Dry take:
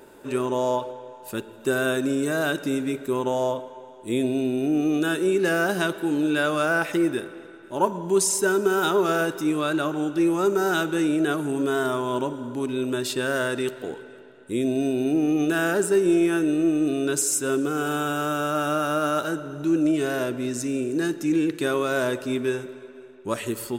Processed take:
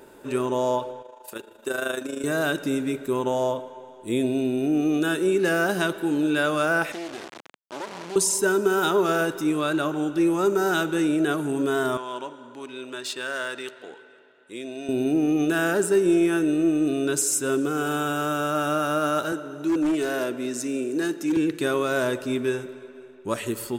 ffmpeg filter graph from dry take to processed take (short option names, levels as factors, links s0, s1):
-filter_complex "[0:a]asettb=1/sr,asplit=3[s0][s1][s2];[s0]atrim=end=1.024[s3];[s1]atrim=start=1.02:end=2.24,asetpts=PTS-STARTPTS,afade=t=in:d=0.004:c=qsin,afade=t=out:st=1.216:d=0.004:c=qsin,bass=f=250:g=-15,treble=f=4000:g=1,tremolo=f=26:d=0.667[s4];[s2]atrim=start=2.236[s5];[s3][s4]acrossfade=d=0.004:c1=hsin:c2=qsin[s6];[s6][s5]acrossfade=d=0.004:c1=qsin:c2=hsin,asettb=1/sr,asplit=3[s7][s8][s9];[s7]atrim=end=6.924[s10];[s8]atrim=start=6.92:end=8.16,asetpts=PTS-STARTPTS,afade=t=in:d=0.004:c=qsin,afade=t=out:st=1.236:d=0.004:c=qsin,acompressor=threshold=0.0447:ratio=4:attack=3.2:release=140:knee=1:detection=peak,acrusher=bits=3:dc=4:mix=0:aa=0.000001,highpass=230,lowpass=7200[s11];[s9]atrim=start=8.156[s12];[s10][s11]acrossfade=d=0.004:c1=hsin:c2=qsin[s13];[s13][s12]acrossfade=d=0.004:c1=qsin:c2=hsin,asettb=1/sr,asplit=3[s14][s15][s16];[s14]atrim=end=11.974[s17];[s15]atrim=start=11.97:end=14.89,asetpts=PTS-STARTPTS,afade=t=in:d=0.004:c=qsin,afade=t=out:st=2.916:d=0.004:c=qsin,highpass=f=1200:p=1,adynamicsmooth=sensitivity=5:basefreq=5900[s18];[s16]atrim=start=14.886[s19];[s17][s18]acrossfade=d=0.004:c1=hsin:c2=qsin[s20];[s20][s19]acrossfade=d=0.004:c1=qsin:c2=hsin,asettb=1/sr,asplit=3[s21][s22][s23];[s21]atrim=end=19.324[s24];[s22]atrim=start=19.32:end=21.37,asetpts=PTS-STARTPTS,afade=t=in:d=0.004:c=qsin,afade=t=out:st=2.046:d=0.004:c=qsin,highpass=220,aeval=exprs='0.133*(abs(mod(val(0)/0.133+3,4)-2)-1)':c=same[s25];[s23]atrim=start=21.366[s26];[s24][s25]acrossfade=d=0.004:c1=hsin:c2=qsin[s27];[s27][s26]acrossfade=d=0.004:c1=qsin:c2=hsin"